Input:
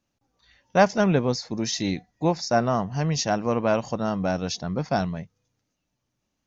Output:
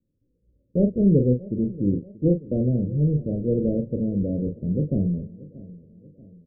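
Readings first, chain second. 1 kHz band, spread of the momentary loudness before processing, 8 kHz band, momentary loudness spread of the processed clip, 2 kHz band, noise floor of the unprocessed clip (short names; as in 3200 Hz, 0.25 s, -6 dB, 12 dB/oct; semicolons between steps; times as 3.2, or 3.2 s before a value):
under -30 dB, 7 LU, n/a, 10 LU, under -40 dB, -79 dBFS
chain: block floating point 3-bit; steep low-pass 530 Hz 72 dB/oct; low shelf 240 Hz +6 dB; doubler 40 ms -6.5 dB; feedback echo 0.633 s, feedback 47%, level -19.5 dB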